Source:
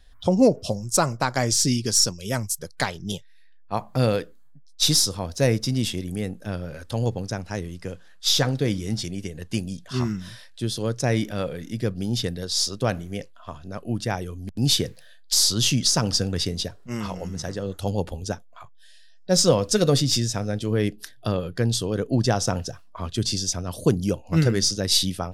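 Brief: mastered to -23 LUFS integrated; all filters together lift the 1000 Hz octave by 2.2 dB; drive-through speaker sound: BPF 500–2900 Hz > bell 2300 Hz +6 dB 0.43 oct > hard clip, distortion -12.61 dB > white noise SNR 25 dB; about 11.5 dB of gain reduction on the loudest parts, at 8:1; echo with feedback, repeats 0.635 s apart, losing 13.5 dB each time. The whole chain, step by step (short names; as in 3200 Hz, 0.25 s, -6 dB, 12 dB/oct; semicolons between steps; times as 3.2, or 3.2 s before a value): bell 1000 Hz +3.5 dB; compressor 8:1, threshold -23 dBFS; BPF 500–2900 Hz; bell 2300 Hz +6 dB 0.43 oct; feedback echo 0.635 s, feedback 21%, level -13.5 dB; hard clip -25.5 dBFS; white noise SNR 25 dB; gain +14 dB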